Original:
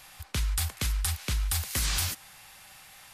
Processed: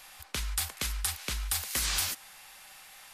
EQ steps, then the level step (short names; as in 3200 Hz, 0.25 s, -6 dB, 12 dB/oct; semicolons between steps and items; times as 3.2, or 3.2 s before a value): bell 97 Hz -13 dB 1.9 oct; 0.0 dB